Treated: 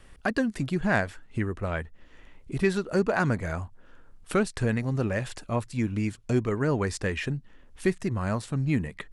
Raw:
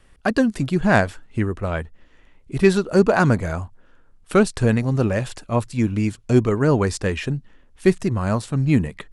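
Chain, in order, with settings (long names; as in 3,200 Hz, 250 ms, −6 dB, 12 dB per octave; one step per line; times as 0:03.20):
dynamic equaliser 1,900 Hz, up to +5 dB, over −41 dBFS, Q 2.1
downward compressor 1.5 to 1, threshold −43 dBFS, peak gain reduction 12 dB
level +2 dB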